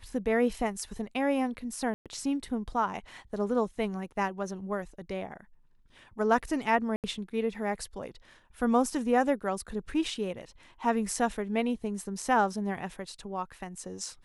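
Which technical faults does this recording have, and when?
1.94–2.06 s: dropout 117 ms
6.96–7.04 s: dropout 78 ms

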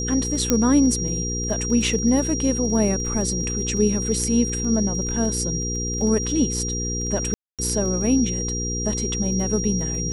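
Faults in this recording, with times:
crackle 15 per s -30 dBFS
hum 60 Hz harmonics 8 -28 dBFS
whine 5.7 kHz -27 dBFS
0.50 s: pop -4 dBFS
7.34–7.59 s: dropout 247 ms

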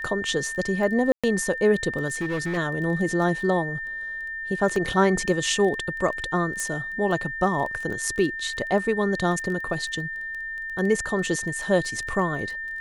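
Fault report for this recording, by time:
crackle 13 per s -31 dBFS
whine 1.8 kHz -30 dBFS
1.12–1.24 s: dropout 116 ms
2.09–2.58 s: clipped -23 dBFS
4.76 s: dropout 2.4 ms
6.60 s: pop -15 dBFS

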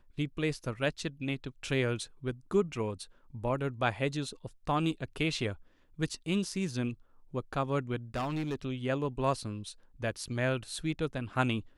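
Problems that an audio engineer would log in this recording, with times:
8.15–8.55 s: clipped -29.5 dBFS

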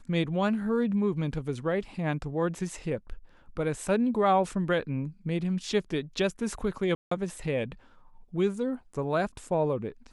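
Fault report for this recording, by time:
6.95–7.11 s: dropout 164 ms

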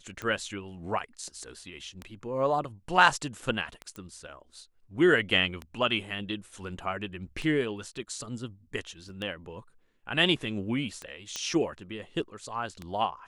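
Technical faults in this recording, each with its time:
tick 33 1/3 rpm -22 dBFS
3.96 s: pop -26 dBFS
9.09 s: dropout 3.1 ms
11.36 s: pop -18 dBFS

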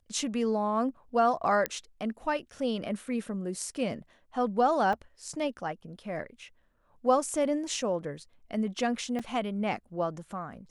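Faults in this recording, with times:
1.66 s: pop -13 dBFS
4.93 s: dropout 2.4 ms
9.19 s: dropout 4.7 ms

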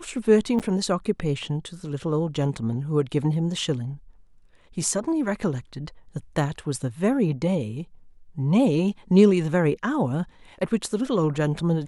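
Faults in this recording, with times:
0.59–0.60 s: dropout 7.9 ms

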